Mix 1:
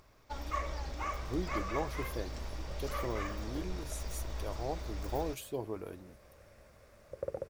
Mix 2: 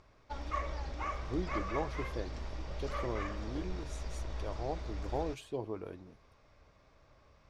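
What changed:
second sound: muted; master: add air absorption 88 m

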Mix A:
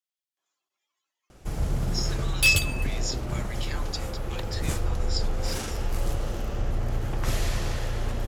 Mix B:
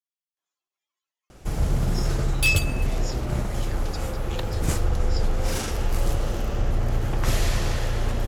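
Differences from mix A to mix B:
speech -5.5 dB; first sound +4.0 dB; reverb: off

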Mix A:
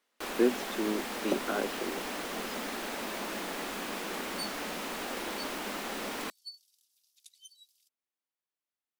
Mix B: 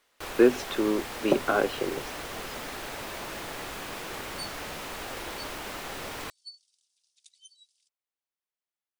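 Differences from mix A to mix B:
speech +9.0 dB; second sound: add brick-wall FIR low-pass 10000 Hz; master: add resonant low shelf 160 Hz +9.5 dB, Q 3

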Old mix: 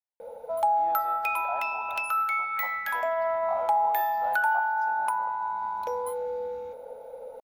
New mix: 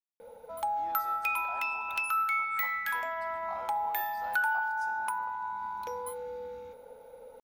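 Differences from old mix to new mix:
speech: remove LPF 3800 Hz 12 dB/oct; master: add bell 640 Hz -12.5 dB 1 oct

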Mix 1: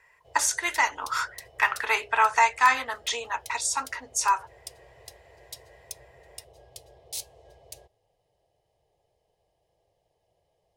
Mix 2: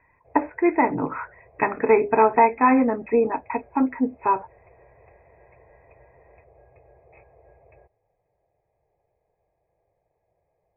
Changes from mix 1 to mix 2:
speech: remove resonant high-pass 1400 Hz, resonance Q 2; master: add brick-wall FIR low-pass 2600 Hz

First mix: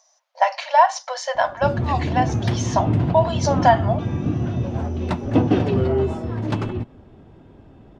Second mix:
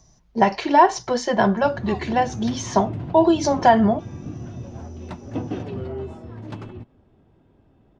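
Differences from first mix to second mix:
speech: remove brick-wall FIR high-pass 510 Hz; background -11.0 dB

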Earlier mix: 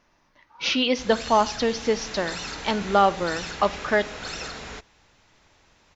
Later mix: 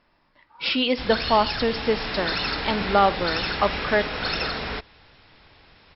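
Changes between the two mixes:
background +8.0 dB; master: add brick-wall FIR low-pass 5500 Hz

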